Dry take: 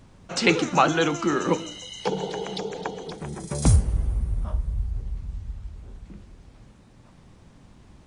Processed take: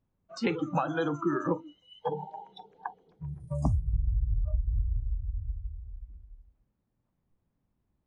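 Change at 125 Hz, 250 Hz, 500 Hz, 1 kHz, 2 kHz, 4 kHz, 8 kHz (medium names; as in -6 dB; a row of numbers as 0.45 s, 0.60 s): -6.0 dB, -6.5 dB, -8.0 dB, -9.0 dB, -12.0 dB, -17.0 dB, under -20 dB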